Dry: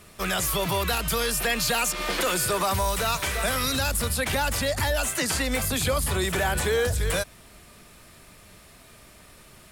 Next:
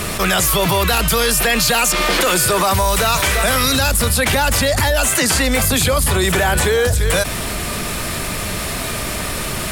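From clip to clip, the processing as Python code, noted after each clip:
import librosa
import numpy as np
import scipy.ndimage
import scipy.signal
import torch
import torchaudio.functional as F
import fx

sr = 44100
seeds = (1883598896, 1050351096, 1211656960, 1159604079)

y = fx.env_flatten(x, sr, amount_pct=70)
y = y * 10.0 ** (7.5 / 20.0)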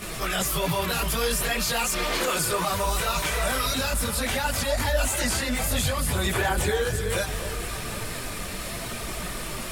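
y = fx.chorus_voices(x, sr, voices=4, hz=0.58, base_ms=21, depth_ms=4.7, mix_pct=65)
y = fx.echo_alternate(y, sr, ms=258, hz=1200.0, feedback_pct=72, wet_db=-9.5)
y = y * 10.0 ** (-8.0 / 20.0)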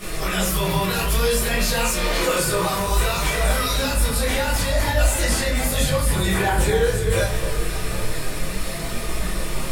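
y = fx.room_shoebox(x, sr, seeds[0], volume_m3=44.0, walls='mixed', distance_m=0.92)
y = y * 10.0 ** (-1.5 / 20.0)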